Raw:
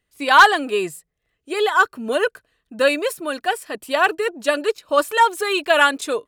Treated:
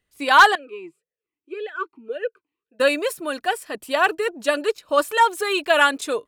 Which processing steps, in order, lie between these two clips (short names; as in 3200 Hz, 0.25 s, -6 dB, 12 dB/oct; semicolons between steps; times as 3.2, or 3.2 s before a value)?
0.55–2.8 vowel sweep e-u 1.8 Hz; gain -1.5 dB